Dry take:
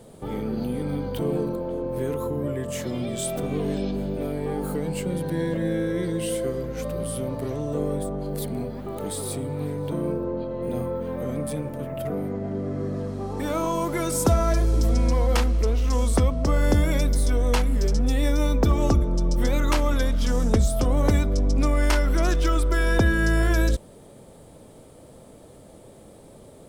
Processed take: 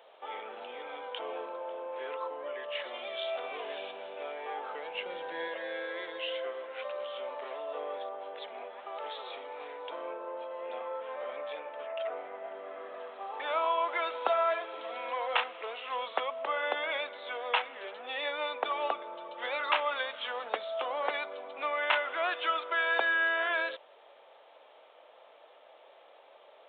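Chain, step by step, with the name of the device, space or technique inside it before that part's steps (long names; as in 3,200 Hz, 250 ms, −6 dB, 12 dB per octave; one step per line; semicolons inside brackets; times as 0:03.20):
0:04.94–0:05.48: low-shelf EQ 210 Hz +11.5 dB
musical greeting card (downsampling to 8,000 Hz; high-pass filter 660 Hz 24 dB per octave; parametric band 2,700 Hz +4 dB 0.36 octaves)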